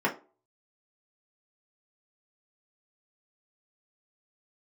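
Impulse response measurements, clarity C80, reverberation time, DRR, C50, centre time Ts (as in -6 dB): 20.0 dB, 0.35 s, -2.5 dB, 13.5 dB, 14 ms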